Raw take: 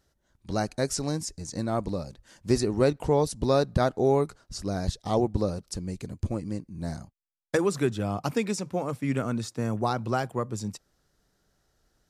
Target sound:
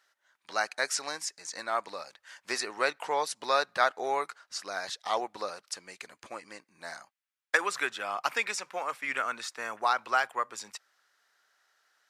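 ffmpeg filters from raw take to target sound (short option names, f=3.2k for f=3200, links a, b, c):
-af "highpass=820,equalizer=f=1.8k:w=0.58:g=12,volume=-2.5dB"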